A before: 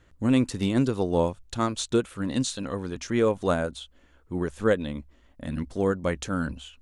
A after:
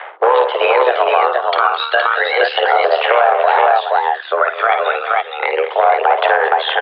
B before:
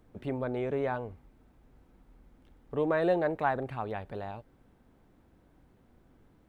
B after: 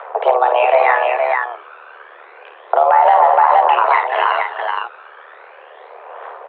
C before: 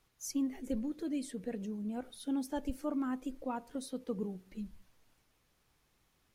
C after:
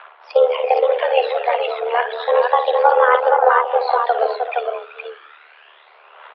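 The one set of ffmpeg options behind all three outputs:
-filter_complex "[0:a]acontrast=55,aphaser=in_gain=1:out_gain=1:delay=1:decay=0.72:speed=0.32:type=triangular,aresample=11025,asoftclip=type=hard:threshold=0.473,aresample=44100,acrossover=split=550 2700:gain=0.0708 1 0.0891[s0][s1][s2];[s0][s1][s2]amix=inputs=3:normalize=0,acompressor=threshold=0.0112:ratio=3,asplit=2[s3][s4];[s4]aecho=0:1:54|213|235|384|468:0.398|0.15|0.168|0.211|0.668[s5];[s3][s5]amix=inputs=2:normalize=0,tremolo=f=75:d=0.621,equalizer=f=1800:w=1.2:g=-6.5,highpass=f=180:t=q:w=0.5412,highpass=f=180:t=q:w=1.307,lowpass=f=3300:t=q:w=0.5176,lowpass=f=3300:t=q:w=0.7071,lowpass=f=3300:t=q:w=1.932,afreqshift=240,alimiter=level_in=37.6:limit=0.891:release=50:level=0:latency=1,volume=0.891"

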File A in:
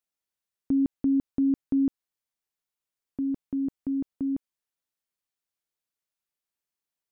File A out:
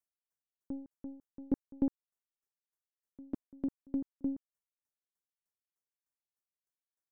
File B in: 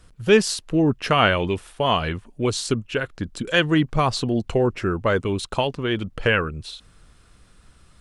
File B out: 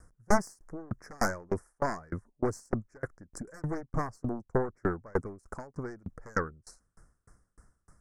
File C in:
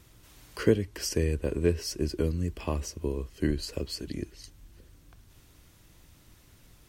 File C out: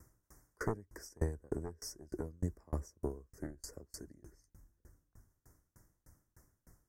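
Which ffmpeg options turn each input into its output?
-af "aeval=exprs='0.794*(cos(1*acos(clip(val(0)/0.794,-1,1)))-cos(1*PI/2))+0.316*(cos(3*acos(clip(val(0)/0.794,-1,1)))-cos(3*PI/2))+0.316*(cos(4*acos(clip(val(0)/0.794,-1,1)))-cos(4*PI/2))+0.2*(cos(7*acos(clip(val(0)/0.794,-1,1)))-cos(7*PI/2))+0.0112*(cos(8*acos(clip(val(0)/0.794,-1,1)))-cos(8*PI/2))':c=same,asuperstop=centerf=3200:order=8:qfactor=0.89,aeval=exprs='val(0)*pow(10,-33*if(lt(mod(3.3*n/s,1),2*abs(3.3)/1000),1-mod(3.3*n/s,1)/(2*abs(3.3)/1000),(mod(3.3*n/s,1)-2*abs(3.3)/1000)/(1-2*abs(3.3)/1000))/20)':c=same,volume=0.447"

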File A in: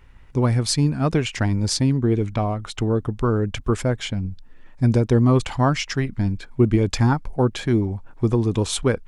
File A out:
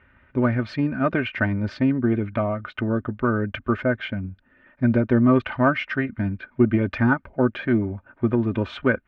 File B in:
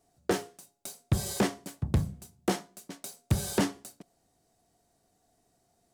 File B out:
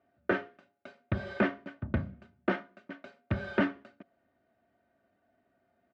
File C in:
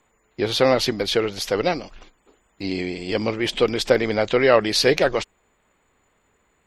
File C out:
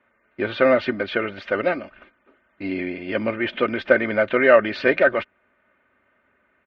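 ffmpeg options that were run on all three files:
-af "aeval=exprs='0.891*(cos(1*acos(clip(val(0)/0.891,-1,1)))-cos(1*PI/2))+0.0316*(cos(4*acos(clip(val(0)/0.891,-1,1)))-cos(4*PI/2))':c=same,highpass=120,equalizer=f=320:t=q:w=4:g=-8,equalizer=f=900:t=q:w=4:g=-8,equalizer=f=1500:t=q:w=4:g=6,lowpass=f=2500:w=0.5412,lowpass=f=2500:w=1.3066,aecho=1:1:3.3:0.62,volume=1.12"

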